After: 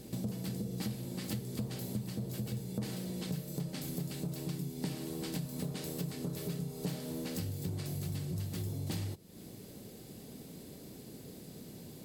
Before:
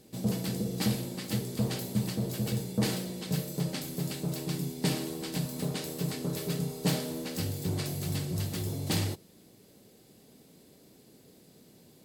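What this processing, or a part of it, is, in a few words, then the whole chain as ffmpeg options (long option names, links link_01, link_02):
ASMR close-microphone chain: -af "lowshelf=frequency=230:gain=7.5,acompressor=threshold=-42dB:ratio=5,highshelf=frequency=11000:gain=3.5,volume=5dB"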